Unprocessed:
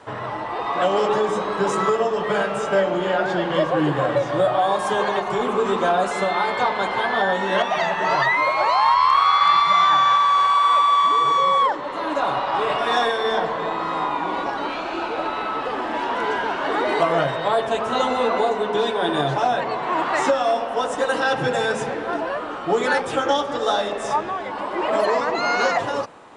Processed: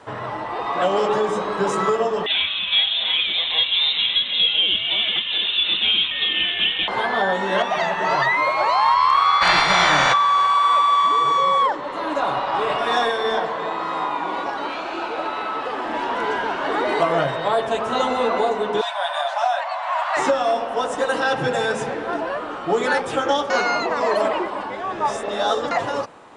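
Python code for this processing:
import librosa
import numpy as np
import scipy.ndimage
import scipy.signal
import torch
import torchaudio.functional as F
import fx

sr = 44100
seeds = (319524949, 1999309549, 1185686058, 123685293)

y = fx.freq_invert(x, sr, carrier_hz=3900, at=(2.26, 6.88))
y = fx.spec_clip(y, sr, under_db=27, at=(9.41, 10.12), fade=0.02)
y = fx.low_shelf(y, sr, hz=210.0, db=-8.0, at=(13.38, 15.86))
y = fx.brickwall_highpass(y, sr, low_hz=550.0, at=(18.81, 20.17))
y = fx.edit(y, sr, fx.reverse_span(start_s=23.5, length_s=2.21), tone=tone)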